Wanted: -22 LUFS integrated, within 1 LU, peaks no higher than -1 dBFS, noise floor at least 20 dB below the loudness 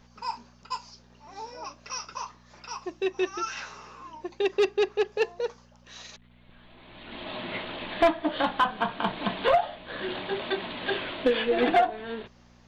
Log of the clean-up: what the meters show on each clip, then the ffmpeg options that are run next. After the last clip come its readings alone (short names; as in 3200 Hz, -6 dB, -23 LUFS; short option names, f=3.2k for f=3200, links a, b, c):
hum 60 Hz; harmonics up to 240 Hz; hum level -55 dBFS; loudness -28.5 LUFS; peak -15.0 dBFS; loudness target -22.0 LUFS
-> -af "bandreject=f=60:t=h:w=4,bandreject=f=120:t=h:w=4,bandreject=f=180:t=h:w=4,bandreject=f=240:t=h:w=4"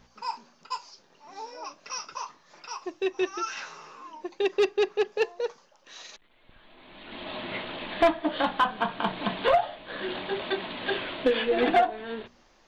hum none; loudness -28.5 LUFS; peak -14.0 dBFS; loudness target -22.0 LUFS
-> -af "volume=6.5dB"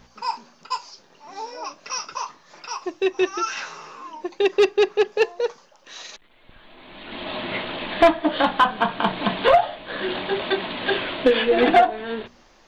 loudness -22.0 LUFS; peak -7.5 dBFS; noise floor -55 dBFS